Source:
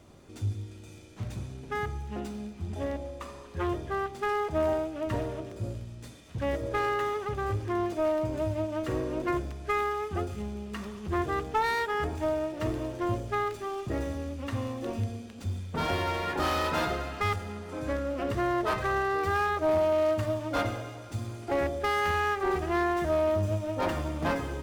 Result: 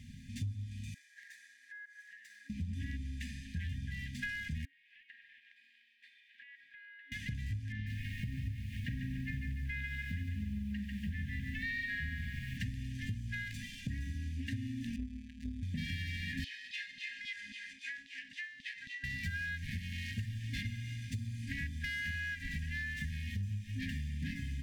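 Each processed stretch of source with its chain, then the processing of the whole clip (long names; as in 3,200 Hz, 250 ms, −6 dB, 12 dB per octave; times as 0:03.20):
0:00.94–0:02.50: high-pass filter 1,000 Hz 24 dB per octave + high shelf with overshoot 2,100 Hz −7.5 dB, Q 3 + downward compressor 10 to 1, threshold −48 dBFS
0:04.65–0:07.12: Bessel high-pass filter 1,000 Hz, order 6 + downward compressor 12 to 1, threshold −45 dBFS + high-frequency loss of the air 480 metres
0:07.72–0:12.58: low-pass filter 3,300 Hz + feedback echo at a low word length 145 ms, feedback 55%, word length 9 bits, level −3.5 dB
0:14.96–0:15.63: high-shelf EQ 2,700 Hz −11 dB + phases set to zero 157 Hz + ring modulation 97 Hz
0:16.44–0:19.04: low-pass filter 7,300 Hz + auto-filter high-pass saw down 3.7 Hz 450–3,800 Hz + downward compressor 12 to 1, threshold −39 dBFS
whole clip: brick-wall band-stop 270–1,600 Hz; high-shelf EQ 4,300 Hz −7.5 dB; downward compressor 6 to 1, threshold −42 dBFS; level +6 dB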